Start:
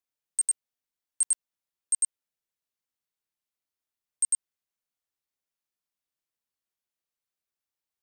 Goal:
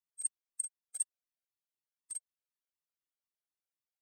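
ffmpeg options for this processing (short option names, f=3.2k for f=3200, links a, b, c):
-af "atempo=2,afftfilt=real='hypot(re,im)*cos(2*PI*random(0))':imag='hypot(re,im)*sin(2*PI*random(1))':win_size=512:overlap=0.75,afftfilt=real='re*gt(sin(2*PI*4*pts/sr)*(1-2*mod(floor(b*sr/1024/420),2)),0)':imag='im*gt(sin(2*PI*4*pts/sr)*(1-2*mod(floor(b*sr/1024/420),2)),0)':win_size=1024:overlap=0.75,volume=1dB"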